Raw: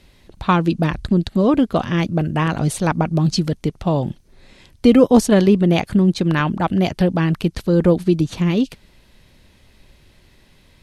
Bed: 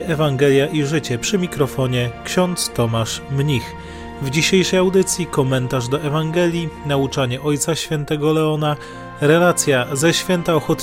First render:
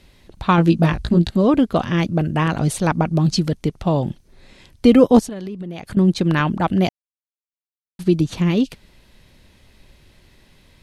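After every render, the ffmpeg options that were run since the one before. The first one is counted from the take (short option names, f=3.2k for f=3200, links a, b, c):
-filter_complex "[0:a]asettb=1/sr,asplit=3[a][b][c];[a]atrim=end=0.564[d];[b]atrim=start=0.56:end=1.37,asetpts=PTS-STARTPTS,afade=t=in:d=0.004:c=qsin,afade=t=out:st=0.806:d=0.004:c=qsin,asplit=2[e][f];[f]adelay=18,volume=-3dB[g];[e][g]amix=inputs=2:normalize=0,atrim=end_sample=35721[h];[c]atrim=start=1.366[i];[d][h]acrossfade=d=0.004:c1=hsin:c2=qsin[j];[j][i]acrossfade=d=0.004:c1=qsin:c2=hsin,asettb=1/sr,asplit=3[k][l][m];[k]atrim=end=5.194[n];[l]atrim=start=5.19:end=5.97,asetpts=PTS-STARTPTS,afade=t=in:d=0.004:c=qsin,afade=t=out:st=0.776:d=0.004:c=qsin,acompressor=threshold=-27dB:ratio=8:attack=3.2:release=140:knee=1:detection=peak[o];[m]atrim=start=5.966[p];[n][o]acrossfade=d=0.004:c1=hsin:c2=qsin[q];[q][p]acrossfade=d=0.004:c1=qsin:c2=hsin,asplit=3[r][s][t];[r]atrim=end=6.89,asetpts=PTS-STARTPTS,afade=t=out:st=6.886:d=0.004:c=hsin[u];[s]atrim=start=6.89:end=7.99,asetpts=PTS-STARTPTS,volume=0[v];[t]atrim=start=7.99,asetpts=PTS-STARTPTS,afade=t=in:d=0.004:c=hsin[w];[u][v][w]concat=n=3:v=0:a=1"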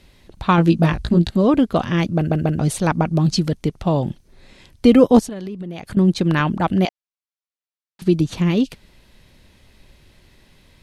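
-filter_complex "[0:a]asettb=1/sr,asplit=3[a][b][c];[a]atrim=end=6.854[d];[b]atrim=start=6.85:end=8.02,asetpts=PTS-STARTPTS,afade=t=in:d=0.004:c=qsin,afade=t=out:st=1.166:d=0.004:c=qsin,highpass=580,lowpass=6k[e];[c]atrim=start=8.016[f];[d][e]acrossfade=d=0.004:c1=hsin:c2=qsin[g];[g][f]acrossfade=d=0.004:c1=qsin:c2=hsin,asplit=4[h][i][j][k];[h]atrim=end=2.312[l];[i]atrim=start=2.168:end=2.312[m];[j]atrim=start=2.168:end=2.312[n];[k]atrim=start=2.588[o];[l][m]acrossfade=d=0.004:c1=hsin:c2=hsin[p];[p][n]acrossfade=d=0.004:c1=hsin:c2=hsin[q];[q][o]acrossfade=d=0.004:c1=hsin:c2=hsin"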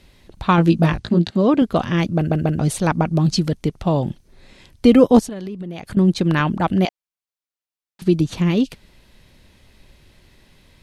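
-filter_complex "[0:a]asettb=1/sr,asplit=3[a][b][c];[a]atrim=end=0.994[d];[b]atrim=start=0.99:end=1.62,asetpts=PTS-STARTPTS,afade=t=in:d=0.004:c=qsin,afade=t=out:st=0.626:d=0.004:c=qsin,highpass=140,lowpass=6.9k[e];[c]atrim=start=1.616[f];[d][e]acrossfade=d=0.004:c1=hsin:c2=qsin[g];[g][f]acrossfade=d=0.004:c1=qsin:c2=hsin"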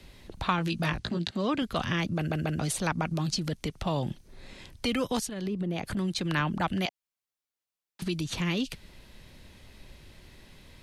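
-filter_complex "[0:a]acrossover=split=160|1400[a][b][c];[a]acompressor=threshold=-33dB:ratio=4[d];[b]acompressor=threshold=-28dB:ratio=4[e];[c]acompressor=threshold=-30dB:ratio=4[f];[d][e][f]amix=inputs=3:normalize=0,acrossover=split=600|1200[g][h][i];[g]alimiter=level_in=0.5dB:limit=-24dB:level=0:latency=1,volume=-0.5dB[j];[j][h][i]amix=inputs=3:normalize=0"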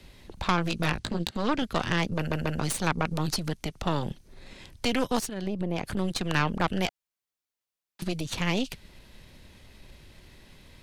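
-af "aeval=exprs='0.282*(cos(1*acos(clip(val(0)/0.282,-1,1)))-cos(1*PI/2))+0.0562*(cos(6*acos(clip(val(0)/0.282,-1,1)))-cos(6*PI/2))':c=same"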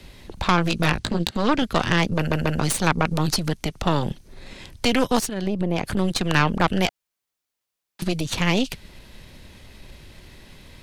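-af "volume=6.5dB,alimiter=limit=-3dB:level=0:latency=1"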